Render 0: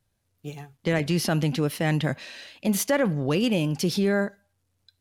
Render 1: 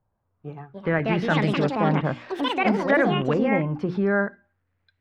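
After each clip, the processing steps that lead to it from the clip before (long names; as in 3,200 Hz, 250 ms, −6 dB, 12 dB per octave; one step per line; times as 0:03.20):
auto-filter low-pass saw up 0.6 Hz 930–2,100 Hz
delay with pitch and tempo change per echo 408 ms, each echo +5 semitones, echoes 2
mains-hum notches 60/120/180/240/300/360 Hz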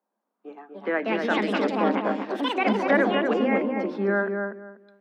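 Butterworth high-pass 200 Hz 96 dB per octave
on a send: feedback echo with a low-pass in the loop 243 ms, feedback 23%, low-pass 1,700 Hz, level −4 dB
on the sum: level −1.5 dB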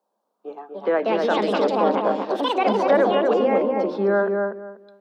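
octave-band graphic EQ 125/250/500/1,000/2,000/4,000 Hz +5/−6/+6/+4/−9/+5 dB
in parallel at −1.5 dB: brickwall limiter −17.5 dBFS, peak gain reduction 10.5 dB
on the sum: level −2 dB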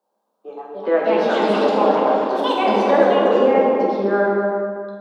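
dense smooth reverb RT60 1.7 s, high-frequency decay 0.75×, DRR −2.5 dB
level −1 dB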